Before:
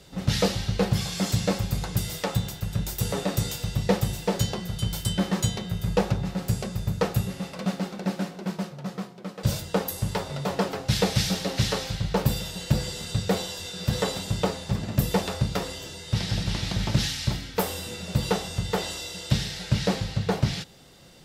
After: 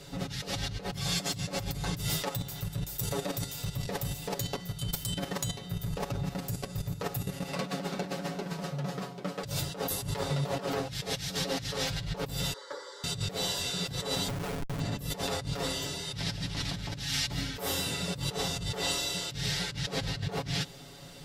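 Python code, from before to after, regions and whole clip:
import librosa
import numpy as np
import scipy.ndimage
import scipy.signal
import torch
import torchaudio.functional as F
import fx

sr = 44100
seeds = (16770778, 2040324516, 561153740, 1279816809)

y = fx.chain(x, sr, fx.level_steps(step_db=15),
    fx.high_shelf(hz=12000.0, db=10.0), at=(2.24, 7.49))
y = fx.chain(y, sr, fx.highpass(hz=520.0, slope=24),
    fx.spacing_loss(db_at_10k=25),
    fx.fixed_phaser(hz=710.0, stages=6), at=(12.53, 13.04))
y = fx.chain(y, sr, fx.highpass(hz=100.0, slope=12),
    fx.schmitt(flips_db=-31.0), at=(14.28, 14.8))
y = fx.over_compress(y, sr, threshold_db=-33.0, ratio=-1.0)
y = y + 0.68 * np.pad(y, (int(7.1 * sr / 1000.0), 0))[:len(y)]
y = F.gain(torch.from_numpy(y), -2.5).numpy()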